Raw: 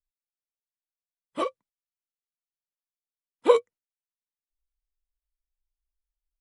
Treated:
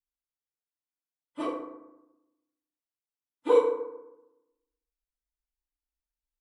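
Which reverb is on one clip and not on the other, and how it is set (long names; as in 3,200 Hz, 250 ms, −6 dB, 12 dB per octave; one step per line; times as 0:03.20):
feedback delay network reverb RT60 0.94 s, low-frequency decay 1.25×, high-frequency decay 0.45×, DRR −9.5 dB
level −14 dB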